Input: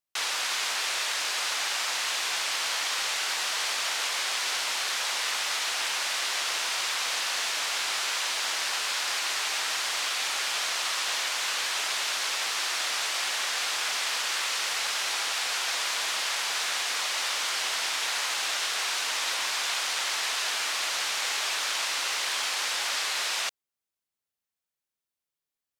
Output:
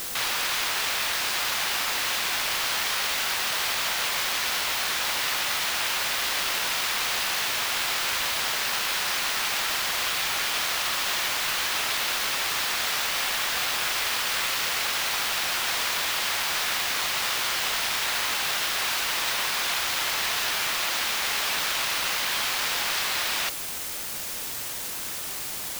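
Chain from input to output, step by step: median filter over 5 samples; requantised 6-bit, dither triangular; gain +3 dB

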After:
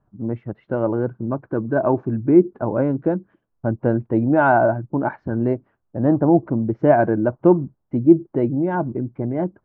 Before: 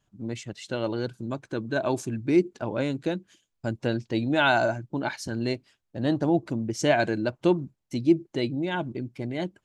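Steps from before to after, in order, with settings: LPF 1300 Hz 24 dB/oct; gain +8 dB

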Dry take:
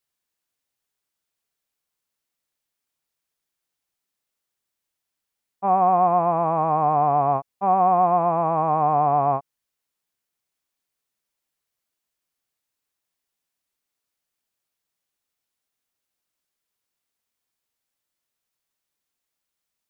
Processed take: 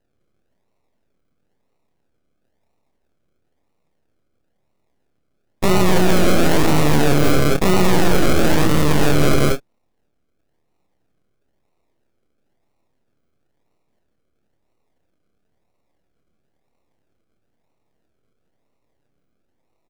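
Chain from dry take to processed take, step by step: tracing distortion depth 0.29 ms; 7.98–9.21 steep low-pass 1200 Hz 72 dB/oct; added harmonics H 3 -15 dB, 7 -29 dB, 8 -31 dB, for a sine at -7.5 dBFS; decimation with a swept rate 38×, swing 60% 1 Hz; full-wave rectifier; doubler 27 ms -7.5 dB; echo 0.165 s -7 dB; maximiser +28.5 dB; gain -4 dB

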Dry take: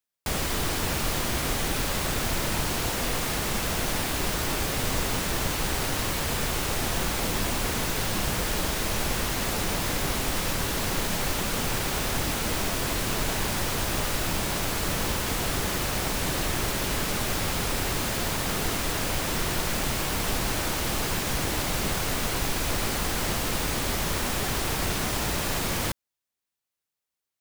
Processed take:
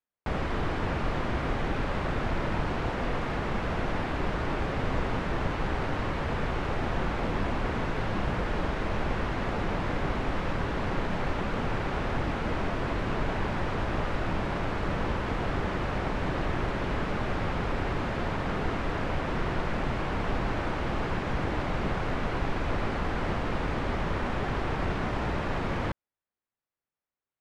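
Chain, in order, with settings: LPF 1800 Hz 12 dB/oct

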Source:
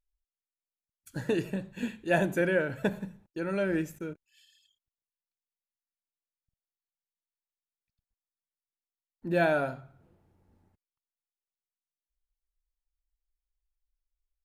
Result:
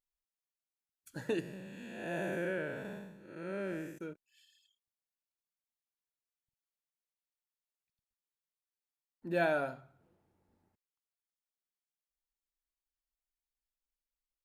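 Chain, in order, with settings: 1.4–3.98 time blur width 0.262 s; low shelf 120 Hz -11.5 dB; gain -4.5 dB

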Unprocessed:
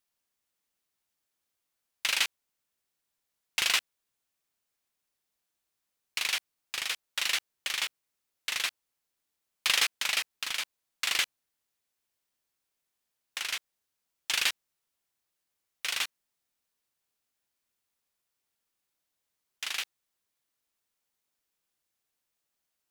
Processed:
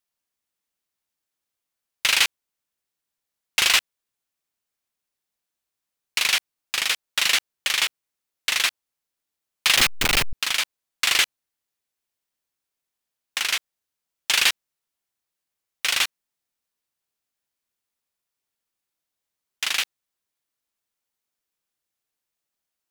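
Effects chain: 9.76–10.33 level-crossing sampler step -25 dBFS; sample leveller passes 2; gain +2.5 dB

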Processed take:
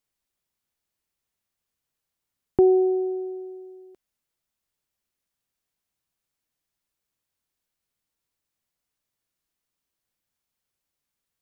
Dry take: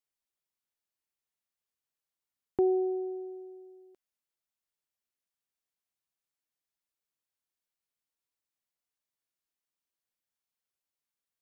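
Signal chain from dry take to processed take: low shelf 230 Hz +8.5 dB; gain +6.5 dB

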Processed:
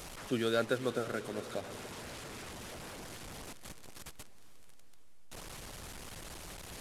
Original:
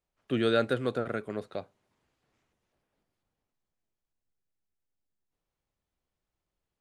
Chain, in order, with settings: delta modulation 64 kbps, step -36 dBFS; diffused feedback echo 0.464 s, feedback 54%, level -15.5 dB; harmonic-percussive split harmonic -5 dB; gain -2 dB

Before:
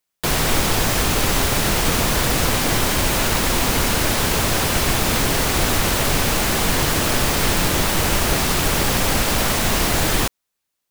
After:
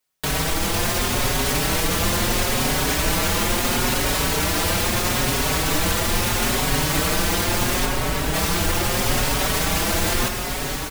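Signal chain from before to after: limiter -15 dBFS, peak gain reduction 9.5 dB; 7.85–8.34 air absorption 360 m; diffused feedback echo 0.581 s, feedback 53%, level -5 dB; endless flanger 5 ms +0.76 Hz; gain +5 dB

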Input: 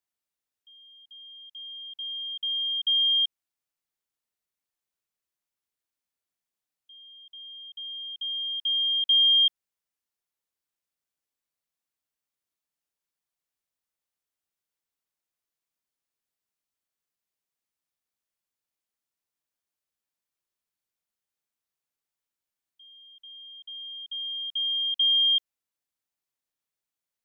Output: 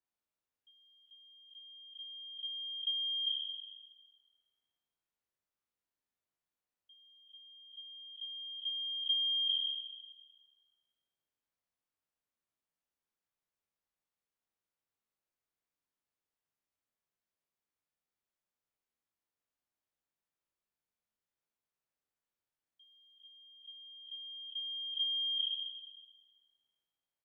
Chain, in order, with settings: spectral trails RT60 1.46 s; high shelf 3000 Hz -11 dB; doubler 40 ms -6 dB; gain -4 dB

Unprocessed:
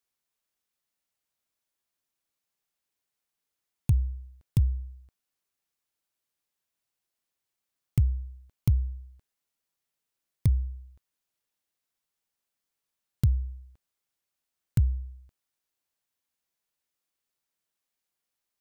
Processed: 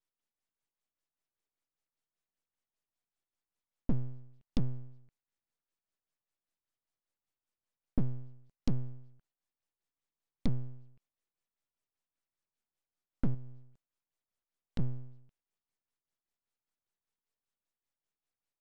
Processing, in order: 13.34–14.79 compressor 5:1, threshold -33 dBFS, peak gain reduction 13 dB; LFO low-pass sine 5.1 Hz 480–4800 Hz; full-wave rectifier; gain -4.5 dB

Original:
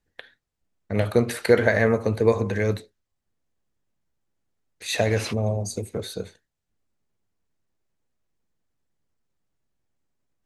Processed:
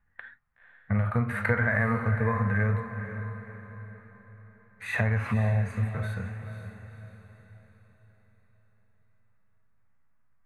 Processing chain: harmonic-percussive split percussive -13 dB; EQ curve 150 Hz 0 dB, 230 Hz -3 dB, 360 Hz -17 dB, 1200 Hz +7 dB, 2000 Hz +2 dB, 3200 Hz -14 dB, 5300 Hz -25 dB, 9500 Hz -14 dB; compressor, threshold -31 dBFS, peak gain reduction 11.5 dB; diffused feedback echo 0.501 s, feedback 45%, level -9.5 dB; gain +8.5 dB

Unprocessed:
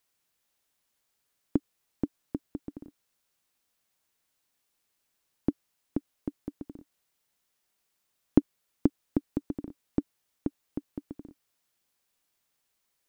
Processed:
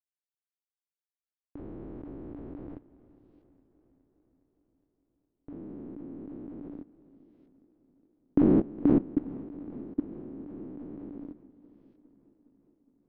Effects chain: spectral trails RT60 1.63 s; gate with hold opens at -55 dBFS; bell 220 Hz -9 dB 1.4 oct, from 5.49 s 70 Hz; level quantiser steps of 22 dB; air absorption 340 m; warbling echo 0.413 s, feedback 67%, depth 75 cents, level -20 dB; gain +2.5 dB

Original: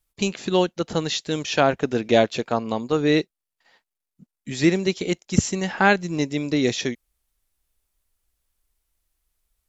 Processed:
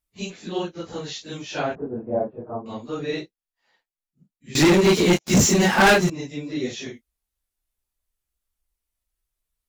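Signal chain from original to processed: phase scrambler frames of 0.1 s; 1.75–2.66 LPF 1000 Hz 24 dB/oct; 4.55–6.1 sample leveller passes 5; gain -7.5 dB

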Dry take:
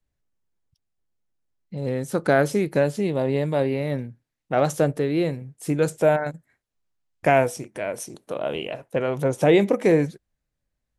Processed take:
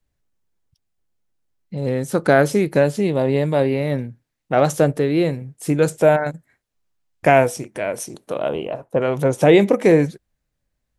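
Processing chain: 8.49–9.02 resonant high shelf 1500 Hz -7.5 dB, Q 1.5; gain +4.5 dB

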